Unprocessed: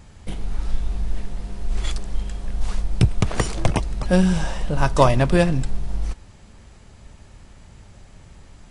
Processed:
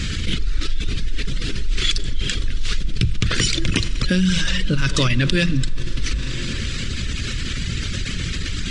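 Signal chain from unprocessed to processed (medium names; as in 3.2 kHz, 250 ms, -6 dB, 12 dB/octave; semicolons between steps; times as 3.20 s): hum notches 50/100/150/200 Hz; reverb removal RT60 0.87 s; FFT filter 300 Hz 0 dB, 500 Hz -7 dB, 790 Hz -26 dB, 1.4 kHz +1 dB, 3.6 kHz +10 dB, 7.4 kHz +1 dB, 11 kHz -9 dB; peak limiter -14 dBFS, peak gain reduction 10 dB; reverse echo 72 ms -22.5 dB; reverberation RT60 3.9 s, pre-delay 33 ms, DRR 16.5 dB; level flattener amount 70%; trim +1.5 dB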